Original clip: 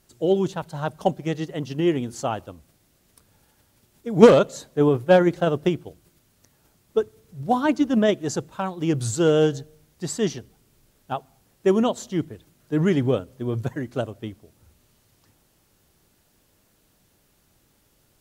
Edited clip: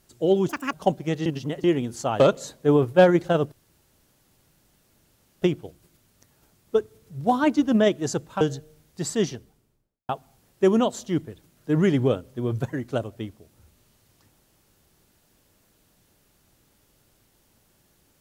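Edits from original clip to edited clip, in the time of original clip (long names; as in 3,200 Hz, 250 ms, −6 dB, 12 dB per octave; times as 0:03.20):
0:00.49–0:00.92: play speed 180%
0:01.45–0:01.83: reverse
0:02.39–0:04.32: remove
0:05.64: splice in room tone 1.90 s
0:08.63–0:09.44: remove
0:10.28–0:11.12: fade out and dull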